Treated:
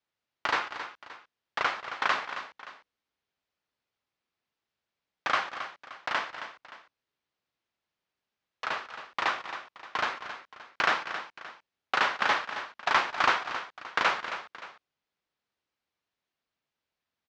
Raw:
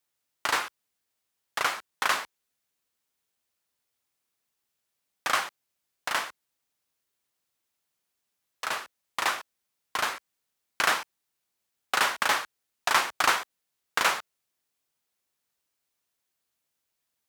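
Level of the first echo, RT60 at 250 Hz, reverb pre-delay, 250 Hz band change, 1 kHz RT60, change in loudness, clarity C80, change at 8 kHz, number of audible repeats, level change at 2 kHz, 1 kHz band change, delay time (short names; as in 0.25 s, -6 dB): -17.5 dB, none, none, +0.5 dB, none, -2.0 dB, none, -14.0 dB, 3, -0.5 dB, 0.0 dB, 0.219 s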